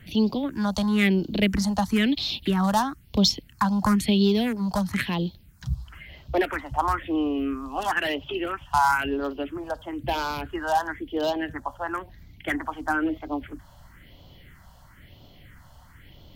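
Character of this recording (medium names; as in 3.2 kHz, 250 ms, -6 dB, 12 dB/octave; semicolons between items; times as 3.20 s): phasing stages 4, 1 Hz, lowest notch 350–1800 Hz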